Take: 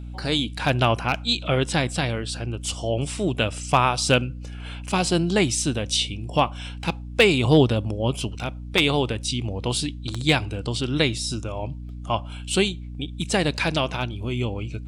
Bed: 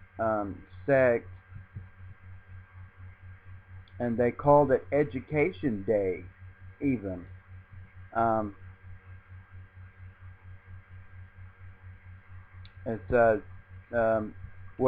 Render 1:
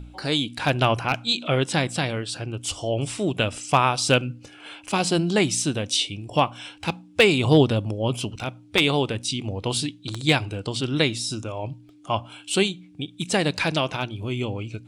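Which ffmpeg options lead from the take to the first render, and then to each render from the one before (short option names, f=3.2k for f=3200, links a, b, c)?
-af "bandreject=f=60:t=h:w=4,bandreject=f=120:t=h:w=4,bandreject=f=180:t=h:w=4,bandreject=f=240:t=h:w=4"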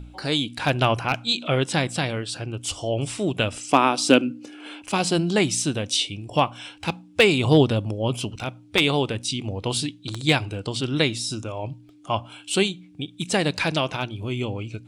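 -filter_complex "[0:a]asettb=1/sr,asplit=3[a][b][c];[a]atrim=end=3.714[d];[b]atrim=start=3.71:end=4.82,asetpts=PTS-STARTPTS,afade=t=in:d=0.004:c=qsin,afade=t=out:st=1.106:d=0.004:c=qsin,highpass=f=270:t=q:w=3.3[e];[c]atrim=start=4.816[f];[d][e]acrossfade=d=0.004:c1=hsin:c2=qsin[g];[g][f]acrossfade=d=0.004:c1=qsin:c2=hsin"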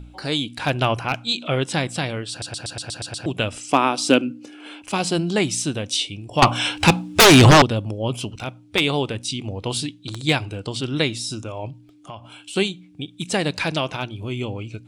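-filter_complex "[0:a]asettb=1/sr,asplit=3[a][b][c];[a]atrim=end=6.424[d];[b]atrim=start=6.42:end=7.62,asetpts=PTS-STARTPTS,afade=t=in:d=0.004:c=qsin,afade=t=out:st=1.196:d=0.004:c=qsin,aeval=exprs='0.501*sin(PI/2*3.98*val(0)/0.501)':c=same[e];[c]atrim=start=7.616[f];[d][e]acrossfade=d=0.004:c1=hsin:c2=qsin[g];[g][f]acrossfade=d=0.004:c1=qsin:c2=hsin,asettb=1/sr,asplit=3[h][i][j];[h]atrim=end=11.704[k];[i]atrim=start=11.7:end=12.56,asetpts=PTS-STARTPTS,afade=t=in:d=0.004:c=qsin,afade=t=out:st=0.856:d=0.004:c=qsin,acompressor=threshold=-33dB:ratio=5:attack=3.2:release=140:knee=1:detection=peak[l];[j]atrim=start=12.556[m];[k][l]acrossfade=d=0.004:c1=hsin:c2=qsin[n];[n][m]acrossfade=d=0.004:c1=qsin:c2=hsin,asplit=9[o][p][q][r][s][t][u][v][w];[o]atrim=end=2.422[x];[p]atrim=start=2.298:end=2.422[y];[q]atrim=start=2.298:end=2.422[z];[r]atrim=start=2.298:end=2.422[aa];[s]atrim=start=2.298:end=2.422[ab];[t]atrim=start=2.298:end=2.422[ac];[u]atrim=start=2.298:end=2.422[ad];[v]atrim=start=2.298:end=2.422[ae];[w]atrim=start=3.258[af];[x][y]acrossfade=d=0.004:c1=hsin:c2=hsin[ag];[ag][z]acrossfade=d=0.004:c1=hsin:c2=hsin[ah];[ah][aa]acrossfade=d=0.004:c1=hsin:c2=hsin[ai];[ai][ab]acrossfade=d=0.004:c1=hsin:c2=hsin[aj];[aj][ac]acrossfade=d=0.004:c1=hsin:c2=hsin[ak];[ak][ad]acrossfade=d=0.004:c1=hsin:c2=hsin[al];[al][ae]acrossfade=d=0.004:c1=hsin:c2=hsin[am];[am][af]acrossfade=d=0.004:c1=hsin:c2=hsin"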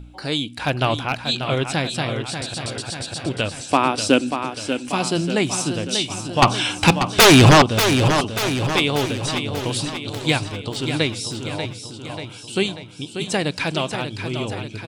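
-af "aecho=1:1:588|1176|1764|2352|2940|3528|4116:0.398|0.227|0.129|0.0737|0.042|0.024|0.0137"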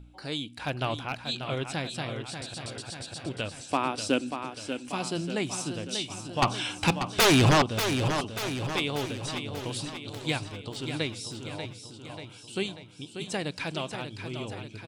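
-af "volume=-10dB"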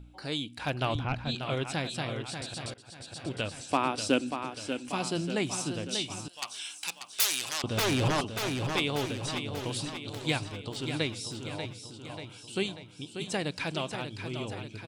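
-filter_complex "[0:a]asettb=1/sr,asplit=3[a][b][c];[a]atrim=end=0.954[d];[b]atrim=start=0.95:end=1.35,asetpts=PTS-STARTPTS,afade=t=in:d=0.004:c=qsin,afade=t=out:st=0.396:d=0.004:c=qsin,aemphasis=mode=reproduction:type=bsi[e];[c]atrim=start=1.346[f];[d][e]acrossfade=d=0.004:c1=hsin:c2=qsin[g];[g][f]acrossfade=d=0.004:c1=qsin:c2=hsin,asettb=1/sr,asplit=3[h][i][j];[h]atrim=end=6.284[k];[i]atrim=start=6.28:end=7.64,asetpts=PTS-STARTPTS,afade=t=in:d=0.004:c=qsin,afade=t=out:st=1.356:d=0.004:c=qsin,aderivative[l];[j]atrim=start=7.636[m];[k][l]acrossfade=d=0.004:c1=hsin:c2=qsin[n];[n][m]acrossfade=d=0.004:c1=qsin:c2=hsin,asplit=2[o][p];[o]atrim=end=2.74,asetpts=PTS-STARTPTS,afade=t=out:st=2.736:d=0.004:c=hsin:silence=0.0891251[q];[p]atrim=start=2.74,asetpts=PTS-STARTPTS,afade=t=in:d=0.61:silence=0.0891251[r];[q][r]concat=n=2:v=0:a=1"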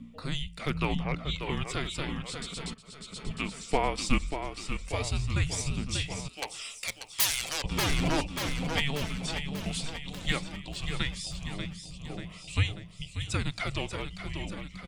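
-af "afreqshift=-290,aphaser=in_gain=1:out_gain=1:delay=4.7:decay=0.34:speed=0.16:type=sinusoidal"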